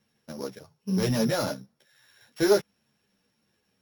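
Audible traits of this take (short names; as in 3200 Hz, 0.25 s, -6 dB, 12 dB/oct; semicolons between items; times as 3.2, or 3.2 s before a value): a buzz of ramps at a fixed pitch in blocks of 8 samples; a shimmering, thickened sound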